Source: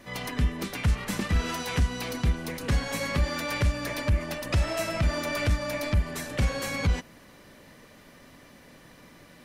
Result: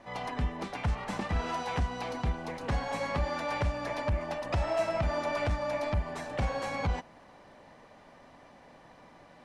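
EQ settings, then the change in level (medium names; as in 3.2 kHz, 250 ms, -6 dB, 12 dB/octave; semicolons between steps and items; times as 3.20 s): distance through air 80 m; peaking EQ 800 Hz +13 dB 1 oct; peaking EQ 9.5 kHz +2.5 dB 0.77 oct; -6.5 dB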